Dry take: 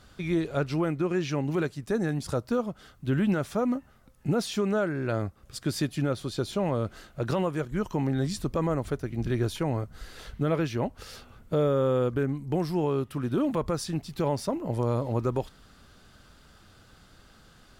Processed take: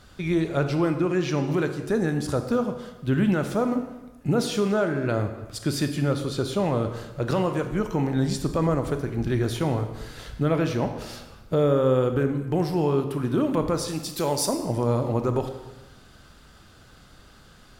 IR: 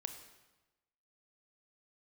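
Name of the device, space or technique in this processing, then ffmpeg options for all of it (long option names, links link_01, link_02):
bathroom: -filter_complex "[0:a]asettb=1/sr,asplit=3[link_01][link_02][link_03];[link_01]atrim=end=13.884[link_04];[link_02]atrim=start=13.88:end=14.49,asetpts=PTS-STARTPTS,afade=type=in:duration=0.004:curve=qsin,afade=type=out:start_time=0.606:duration=0.004:curve=qsin,bass=frequency=250:gain=-7,treble=frequency=4000:gain=13[link_05];[link_03]atrim=start=14.486[link_06];[link_04][link_05]acrossfade=duration=0.004:curve1=hsin:curve2=qsin[link_07];[link_07][link_06]acrossfade=duration=0.004:curve1=qsin:curve2=hsin[link_08];[1:a]atrim=start_sample=2205[link_09];[link_08][link_09]afir=irnorm=-1:irlink=0,volume=6dB"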